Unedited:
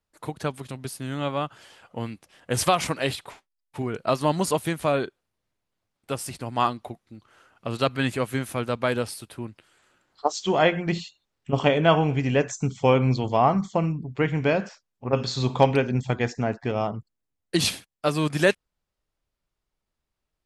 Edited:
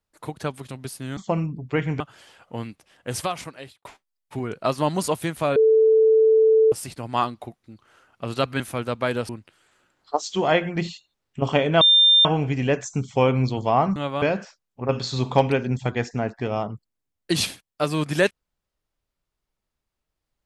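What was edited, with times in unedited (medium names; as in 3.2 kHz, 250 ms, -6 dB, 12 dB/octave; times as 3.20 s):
1.17–1.43 s: swap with 13.63–14.46 s
2.11–3.28 s: fade out linear
4.99–6.15 s: bleep 441 Hz -12.5 dBFS
8.03–8.41 s: delete
9.10–9.40 s: delete
11.92 s: add tone 3.6 kHz -11.5 dBFS 0.44 s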